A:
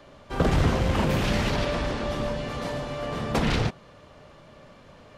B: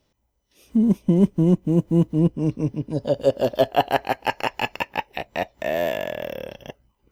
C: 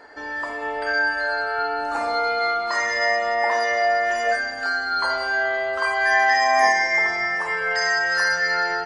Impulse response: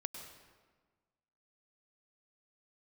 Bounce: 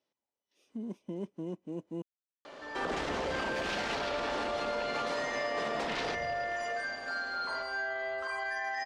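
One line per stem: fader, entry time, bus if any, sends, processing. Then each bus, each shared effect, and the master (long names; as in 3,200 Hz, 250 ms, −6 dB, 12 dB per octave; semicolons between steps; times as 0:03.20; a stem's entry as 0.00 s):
+2.0 dB, 2.45 s, bus A, send −19 dB, high-shelf EQ 8,800 Hz +7.5 dB
−14.0 dB, 0.00 s, muted 0:02.02–0:03.00, bus A, no send, no processing
−11.0 dB, 2.45 s, no bus, no send, brickwall limiter −16.5 dBFS, peak gain reduction 10.5 dB
bus A: 0.0 dB, band-pass filter 310–6,800 Hz; downward compressor 1.5 to 1, threshold −36 dBFS, peak gain reduction 6.5 dB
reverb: on, RT60 1.4 s, pre-delay 94 ms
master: brickwall limiter −25 dBFS, peak gain reduction 9 dB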